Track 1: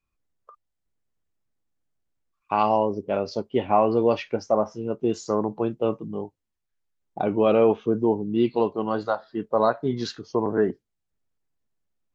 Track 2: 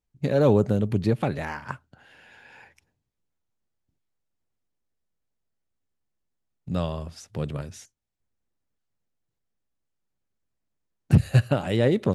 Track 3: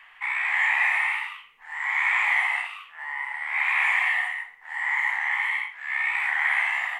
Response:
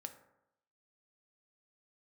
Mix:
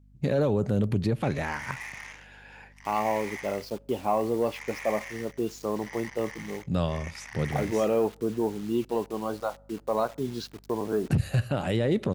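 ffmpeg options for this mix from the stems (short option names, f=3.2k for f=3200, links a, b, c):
-filter_complex "[0:a]equalizer=f=1.9k:w=6.1:g=-15,acontrast=39,acrusher=bits=5:mix=0:aa=0.000001,adelay=350,volume=-12dB,asplit=2[a][b];[b]volume=-13.5dB[c];[1:a]alimiter=limit=-16.5dB:level=0:latency=1:release=32,volume=0dB,asplit=2[d][e];[e]volume=-16.5dB[f];[2:a]aeval=exprs='0.299*(cos(1*acos(clip(val(0)/0.299,-1,1)))-cos(1*PI/2))+0.0422*(cos(7*acos(clip(val(0)/0.299,-1,1)))-cos(7*PI/2))':c=same,asoftclip=type=hard:threshold=-16.5dB,adelay=1000,volume=-15.5dB[g];[3:a]atrim=start_sample=2205[h];[c][f]amix=inputs=2:normalize=0[i];[i][h]afir=irnorm=-1:irlink=0[j];[a][d][g][j]amix=inputs=4:normalize=0,aeval=exprs='val(0)+0.00178*(sin(2*PI*50*n/s)+sin(2*PI*2*50*n/s)/2+sin(2*PI*3*50*n/s)/3+sin(2*PI*4*50*n/s)/4+sin(2*PI*5*50*n/s)/5)':c=same"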